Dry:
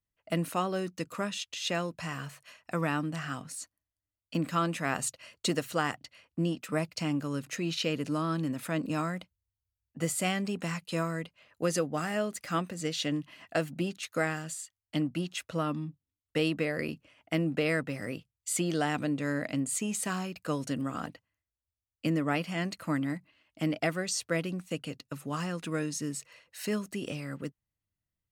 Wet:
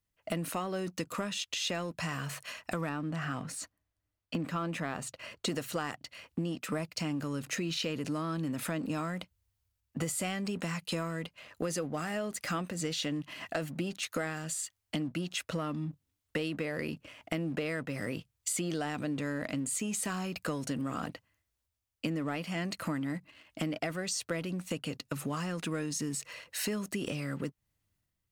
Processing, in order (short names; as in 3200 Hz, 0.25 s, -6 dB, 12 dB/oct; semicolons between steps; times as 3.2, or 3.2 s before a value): 2.89–5.48 high shelf 3400 Hz -11 dB; compressor 6:1, threshold -42 dBFS, peak gain reduction 17.5 dB; sample leveller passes 1; transient shaper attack 0 dB, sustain +5 dB; gain +6 dB